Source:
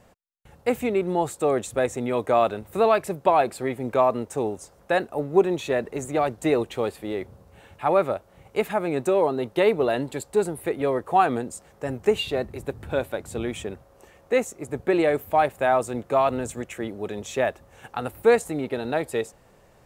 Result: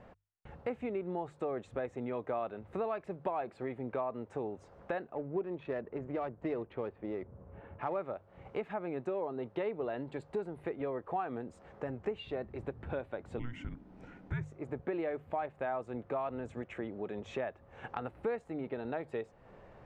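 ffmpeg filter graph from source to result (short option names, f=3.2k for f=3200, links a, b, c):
-filter_complex "[0:a]asettb=1/sr,asplit=3[a][b][c];[a]atrim=end=5.154[d];[b]atrim=start=5.15:end=7.96,asetpts=PTS-STARTPTS,afade=t=in:d=0.004:c=qsin,afade=t=out:st=2.806:d=0.004:c=qsin,bandreject=f=780:w=13,adynamicsmooth=sensitivity=3.5:basefreq=1.5k[e];[c]atrim=start=7.956[f];[d][e]acrossfade=d=0.004:c1=hsin:c2=qsin[g];[g][f]acrossfade=d=0.004:c1=qsin:c2=hsin,asettb=1/sr,asplit=3[h][i][j];[h]atrim=end=13.394[k];[i]atrim=start=13.39:end=14.44,asetpts=PTS-STARTPTS,afade=t=in:d=0.004:c=qsin,afade=t=out:st=1.046:d=0.004:c=qsin,bandreject=f=1.5k:w=14,afreqshift=-360[l];[j]atrim=start=14.436[m];[k][l]acrossfade=d=0.004:c1=hsin:c2=qsin[n];[n][m]acrossfade=d=0.004:c1=qsin:c2=hsin,lowpass=2.2k,bandreject=f=50:t=h:w=6,bandreject=f=100:t=h:w=6,bandreject=f=150:t=h:w=6,acompressor=threshold=-40dB:ratio=3,volume=1dB"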